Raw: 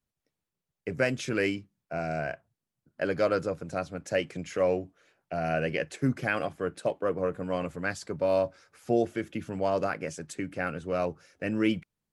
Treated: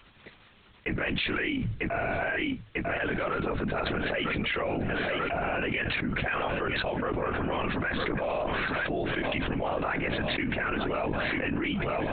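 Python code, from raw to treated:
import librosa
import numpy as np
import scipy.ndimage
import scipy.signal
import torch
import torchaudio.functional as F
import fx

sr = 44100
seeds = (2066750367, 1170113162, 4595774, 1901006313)

y = fx.peak_eq(x, sr, hz=480.0, db=-10.0, octaves=1.1)
y = fx.hum_notches(y, sr, base_hz=50, count=3)
y = fx.lpc_vocoder(y, sr, seeds[0], excitation='whisper', order=10)
y = fx.low_shelf(y, sr, hz=170.0, db=-11.0)
y = fx.echo_feedback(y, sr, ms=946, feedback_pct=53, wet_db=-21)
y = fx.env_flatten(y, sr, amount_pct=100)
y = y * 10.0 ** (-2.5 / 20.0)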